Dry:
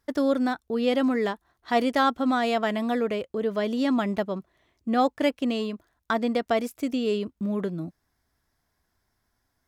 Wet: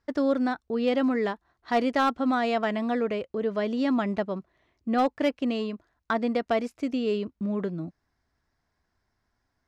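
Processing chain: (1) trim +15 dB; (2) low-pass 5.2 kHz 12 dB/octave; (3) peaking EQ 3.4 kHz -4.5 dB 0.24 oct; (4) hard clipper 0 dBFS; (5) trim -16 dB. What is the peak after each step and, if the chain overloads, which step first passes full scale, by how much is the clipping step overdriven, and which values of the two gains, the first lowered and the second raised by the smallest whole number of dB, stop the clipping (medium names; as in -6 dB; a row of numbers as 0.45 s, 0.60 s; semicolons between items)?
+4.5 dBFS, +4.5 dBFS, +4.5 dBFS, 0.0 dBFS, -16.0 dBFS; step 1, 4.5 dB; step 1 +10 dB, step 5 -11 dB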